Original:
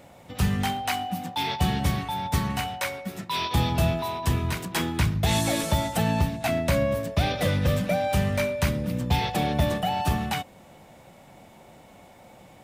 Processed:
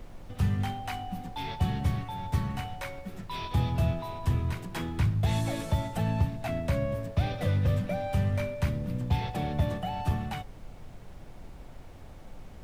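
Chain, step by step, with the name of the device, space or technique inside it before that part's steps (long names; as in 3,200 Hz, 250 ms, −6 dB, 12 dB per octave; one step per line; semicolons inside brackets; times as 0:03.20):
car interior (parametric band 100 Hz +8.5 dB 0.87 octaves; high-shelf EQ 3,200 Hz −7.5 dB; brown noise bed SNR 13 dB)
level −7.5 dB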